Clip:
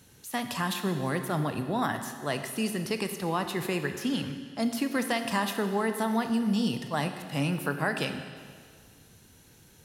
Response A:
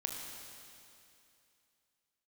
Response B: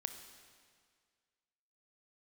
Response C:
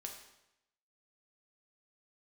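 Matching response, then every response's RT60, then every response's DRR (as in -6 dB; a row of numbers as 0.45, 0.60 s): B; 2.7, 1.9, 0.85 s; 0.5, 7.0, 1.5 dB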